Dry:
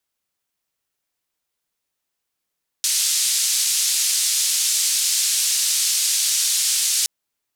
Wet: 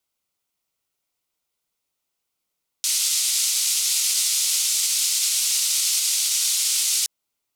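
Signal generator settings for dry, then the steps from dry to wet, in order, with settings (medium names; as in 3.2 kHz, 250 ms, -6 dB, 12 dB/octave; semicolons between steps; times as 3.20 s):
noise band 4.5–8.5 kHz, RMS -20 dBFS 4.22 s
band-stop 1.7 kHz, Q 5.1; peak limiter -11.5 dBFS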